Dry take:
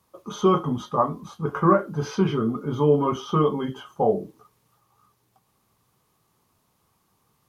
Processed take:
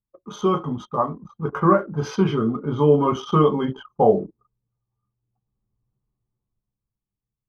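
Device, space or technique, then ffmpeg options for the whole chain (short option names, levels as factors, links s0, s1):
voice memo with heavy noise removal: -af "anlmdn=1,dynaudnorm=f=210:g=13:m=5.01,volume=0.841"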